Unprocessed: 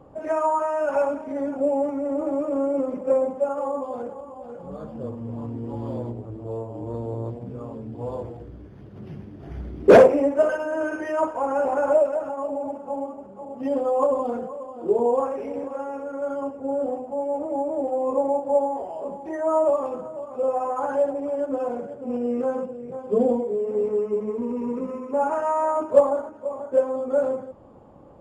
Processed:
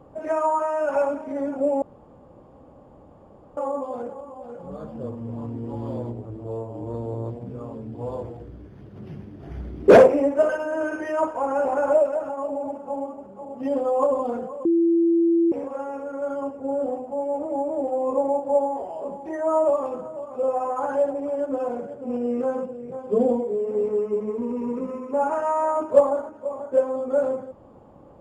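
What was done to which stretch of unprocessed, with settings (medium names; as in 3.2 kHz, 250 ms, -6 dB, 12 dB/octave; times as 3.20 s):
1.82–3.57 s: room tone
14.65–15.52 s: bleep 336 Hz -15.5 dBFS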